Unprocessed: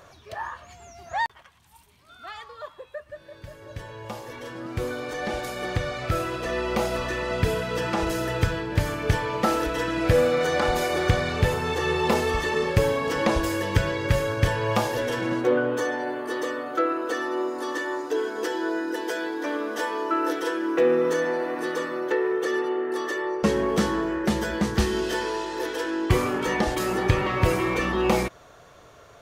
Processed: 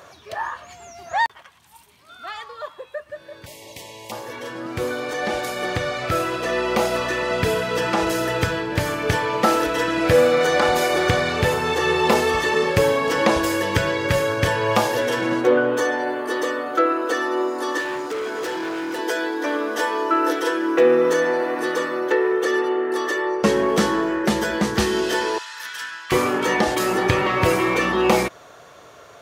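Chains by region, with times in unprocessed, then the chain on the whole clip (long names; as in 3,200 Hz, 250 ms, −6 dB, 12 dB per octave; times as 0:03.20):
0:03.46–0:04.12: Chebyshev band-stop filter 1,000–2,000 Hz, order 4 + every bin compressed towards the loudest bin 2 to 1
0:17.80–0:18.99: hard clipping −29.5 dBFS + multiband upward and downward compressor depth 40%
0:25.38–0:26.12: Chebyshev high-pass filter 1,300 Hz, order 3 + tube saturation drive 22 dB, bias 0.45
whole clip: high-pass filter 62 Hz; low-shelf EQ 150 Hz −10 dB; level +6 dB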